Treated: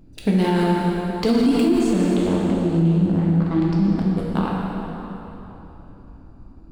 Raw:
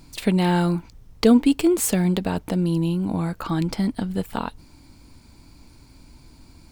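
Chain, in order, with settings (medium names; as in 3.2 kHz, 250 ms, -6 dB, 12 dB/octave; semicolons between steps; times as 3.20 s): local Wiener filter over 41 samples; 1.75–3.97 s: distance through air 120 m; plate-style reverb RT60 3.6 s, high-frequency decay 0.75×, DRR -4 dB; loudness maximiser +9 dB; trim -9 dB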